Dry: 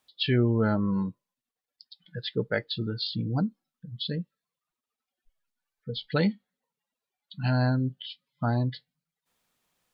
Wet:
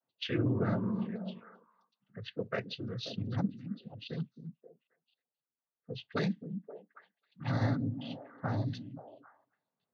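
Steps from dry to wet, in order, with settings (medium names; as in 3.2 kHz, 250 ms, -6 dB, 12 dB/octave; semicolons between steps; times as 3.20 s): noise-vocoded speech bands 16; repeats whose band climbs or falls 266 ms, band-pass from 210 Hz, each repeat 1.4 oct, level -6.5 dB; level-controlled noise filter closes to 980 Hz, open at -22 dBFS; trim -6.5 dB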